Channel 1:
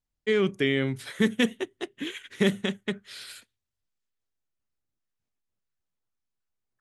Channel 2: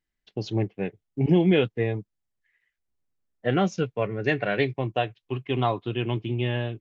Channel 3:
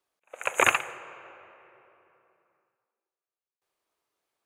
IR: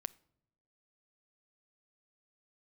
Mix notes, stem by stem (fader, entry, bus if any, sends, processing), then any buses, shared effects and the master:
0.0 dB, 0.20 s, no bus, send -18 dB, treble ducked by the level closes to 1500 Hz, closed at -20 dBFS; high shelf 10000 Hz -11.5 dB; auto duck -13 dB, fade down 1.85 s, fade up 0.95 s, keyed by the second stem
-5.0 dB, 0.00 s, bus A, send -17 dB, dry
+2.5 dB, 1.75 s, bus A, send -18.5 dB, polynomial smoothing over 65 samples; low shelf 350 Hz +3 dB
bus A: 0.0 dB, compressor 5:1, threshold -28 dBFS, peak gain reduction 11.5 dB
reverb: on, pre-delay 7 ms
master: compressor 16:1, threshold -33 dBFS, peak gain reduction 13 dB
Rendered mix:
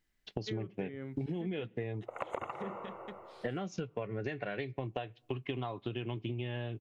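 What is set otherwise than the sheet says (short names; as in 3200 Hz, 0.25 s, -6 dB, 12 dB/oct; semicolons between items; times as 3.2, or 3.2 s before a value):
stem 1 0.0 dB -> -9.0 dB; stem 2 -5.0 dB -> +4.5 dB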